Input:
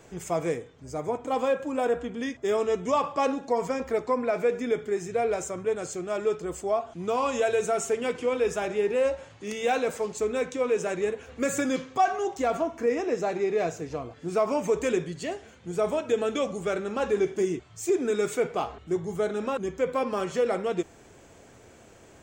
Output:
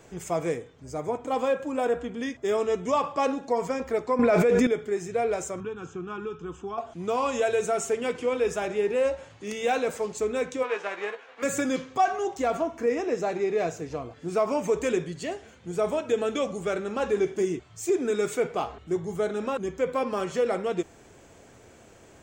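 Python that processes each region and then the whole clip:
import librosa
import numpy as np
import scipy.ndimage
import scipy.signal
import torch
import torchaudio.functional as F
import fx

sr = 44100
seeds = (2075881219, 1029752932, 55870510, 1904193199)

y = fx.chain(x, sr, fx.low_shelf(hz=120.0, db=9.0),
    fx.env_flatten(amount_pct=100), at=(4.19, 4.67))
y = fx.chain(y, sr, fx.air_absorb(metres=200.0),
    fx.fixed_phaser(hz=3000.0, stages=8),
    fx.band_squash(depth_pct=100), at=(5.6, 6.78))
y = fx.envelope_flatten(y, sr, power=0.6, at=(10.62, 11.42), fade=0.02)
y = fx.bandpass_edges(y, sr, low_hz=580.0, high_hz=2300.0, at=(10.62, 11.42), fade=0.02)
y = fx.doubler(y, sr, ms=15.0, db=-8, at=(10.62, 11.42), fade=0.02)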